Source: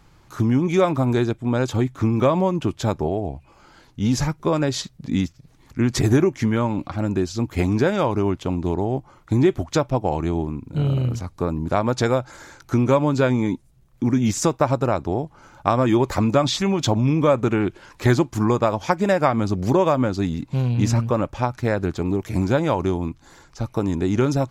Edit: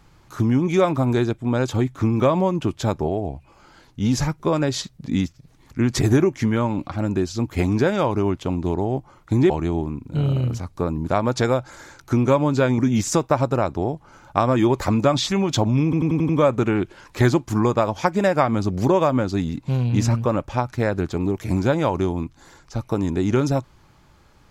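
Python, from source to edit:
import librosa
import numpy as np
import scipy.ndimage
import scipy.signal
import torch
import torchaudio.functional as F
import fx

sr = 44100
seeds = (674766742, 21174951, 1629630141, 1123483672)

y = fx.edit(x, sr, fx.cut(start_s=9.5, length_s=0.61),
    fx.cut(start_s=13.39, length_s=0.69),
    fx.stutter(start_s=17.14, slice_s=0.09, count=6), tone=tone)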